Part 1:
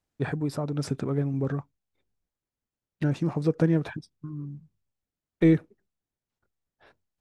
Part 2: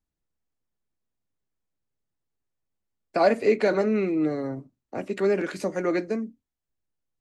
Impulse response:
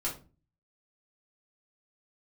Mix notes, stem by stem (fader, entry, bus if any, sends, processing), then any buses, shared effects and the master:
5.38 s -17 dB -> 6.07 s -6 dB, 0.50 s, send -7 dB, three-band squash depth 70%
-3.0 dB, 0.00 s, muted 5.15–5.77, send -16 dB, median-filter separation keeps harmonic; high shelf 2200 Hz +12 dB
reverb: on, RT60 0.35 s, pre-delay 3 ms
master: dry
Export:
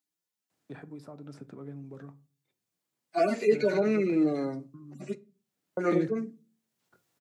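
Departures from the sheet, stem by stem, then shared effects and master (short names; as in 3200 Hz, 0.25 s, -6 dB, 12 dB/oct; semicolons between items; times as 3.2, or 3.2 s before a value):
stem 1: send -7 dB -> -13.5 dB; master: extra HPF 130 Hz 24 dB/oct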